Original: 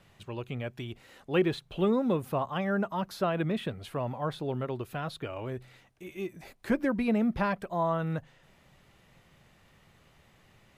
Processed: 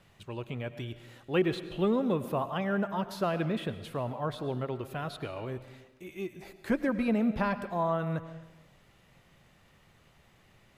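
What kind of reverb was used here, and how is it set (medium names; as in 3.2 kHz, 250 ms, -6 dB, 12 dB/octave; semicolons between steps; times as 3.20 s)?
algorithmic reverb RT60 1.1 s, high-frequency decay 0.9×, pre-delay 65 ms, DRR 12 dB; trim -1 dB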